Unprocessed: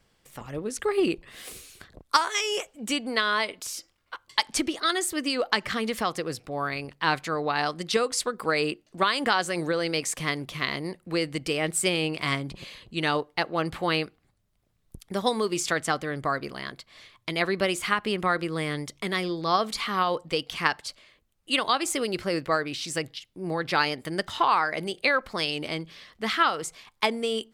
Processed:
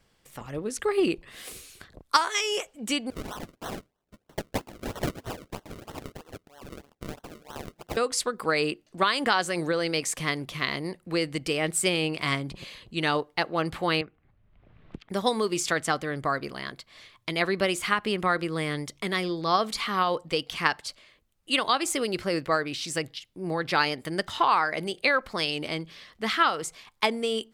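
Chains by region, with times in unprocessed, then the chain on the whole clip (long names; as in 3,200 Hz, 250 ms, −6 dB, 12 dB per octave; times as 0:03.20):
0:03.10–0:07.97: first difference + sample-and-hold swept by an LFO 36× 3.1 Hz
0:14.01–0:15.09: low-pass filter 2,800 Hz 24 dB per octave + multiband upward and downward compressor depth 100%
whole clip: no processing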